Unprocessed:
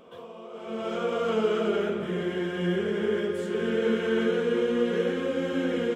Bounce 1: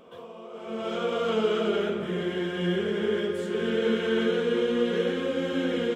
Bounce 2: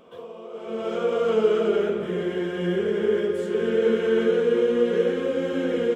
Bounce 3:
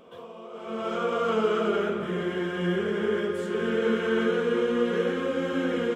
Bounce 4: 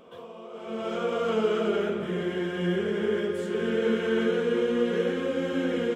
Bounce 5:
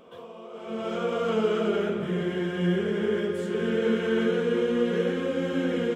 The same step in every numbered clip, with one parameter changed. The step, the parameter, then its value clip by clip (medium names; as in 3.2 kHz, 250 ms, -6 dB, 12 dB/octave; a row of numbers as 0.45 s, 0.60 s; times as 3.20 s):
dynamic bell, frequency: 3.6 kHz, 450 Hz, 1.2 kHz, 9.2 kHz, 150 Hz